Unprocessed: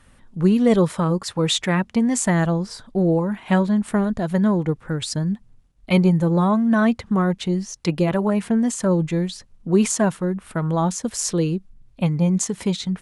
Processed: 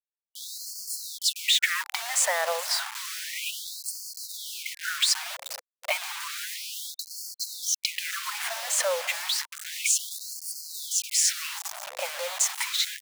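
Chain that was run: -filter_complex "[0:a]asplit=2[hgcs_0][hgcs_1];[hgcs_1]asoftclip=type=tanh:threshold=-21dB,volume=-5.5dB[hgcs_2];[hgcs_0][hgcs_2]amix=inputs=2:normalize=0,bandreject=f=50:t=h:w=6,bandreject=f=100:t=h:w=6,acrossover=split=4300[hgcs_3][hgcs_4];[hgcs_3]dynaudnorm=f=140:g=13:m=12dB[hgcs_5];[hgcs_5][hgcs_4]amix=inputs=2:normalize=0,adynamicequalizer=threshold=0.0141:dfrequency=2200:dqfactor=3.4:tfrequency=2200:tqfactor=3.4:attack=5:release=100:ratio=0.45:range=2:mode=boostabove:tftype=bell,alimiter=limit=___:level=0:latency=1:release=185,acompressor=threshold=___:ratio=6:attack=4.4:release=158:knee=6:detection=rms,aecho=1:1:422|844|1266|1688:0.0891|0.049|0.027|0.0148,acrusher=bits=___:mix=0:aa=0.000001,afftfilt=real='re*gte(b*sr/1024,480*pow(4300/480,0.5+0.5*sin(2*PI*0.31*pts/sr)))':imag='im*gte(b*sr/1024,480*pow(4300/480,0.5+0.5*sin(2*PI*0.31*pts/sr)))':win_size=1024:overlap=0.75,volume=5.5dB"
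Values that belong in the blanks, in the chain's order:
-11.5dB, -22dB, 5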